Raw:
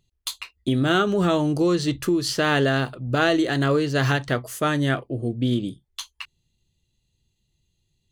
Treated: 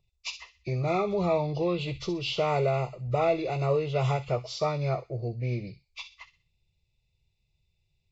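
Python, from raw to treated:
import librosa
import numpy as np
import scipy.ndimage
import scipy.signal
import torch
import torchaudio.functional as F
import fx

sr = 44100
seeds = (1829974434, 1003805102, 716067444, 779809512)

y = fx.freq_compress(x, sr, knee_hz=1100.0, ratio=1.5)
y = fx.fixed_phaser(y, sr, hz=660.0, stages=4)
y = fx.echo_wet_highpass(y, sr, ms=63, feedback_pct=35, hz=2600.0, wet_db=-9)
y = y * librosa.db_to_amplitude(-1.0)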